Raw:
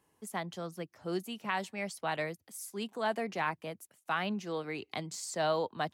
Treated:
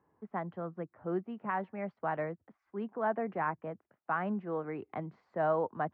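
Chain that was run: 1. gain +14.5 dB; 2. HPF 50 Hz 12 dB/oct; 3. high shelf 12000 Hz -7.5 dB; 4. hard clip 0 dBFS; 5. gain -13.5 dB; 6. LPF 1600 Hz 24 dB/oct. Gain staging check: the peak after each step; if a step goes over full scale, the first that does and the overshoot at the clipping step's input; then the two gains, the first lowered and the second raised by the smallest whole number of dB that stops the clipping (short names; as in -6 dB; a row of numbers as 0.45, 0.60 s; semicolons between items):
-4.5, -4.5, -4.5, -4.5, -18.0, -19.0 dBFS; no overload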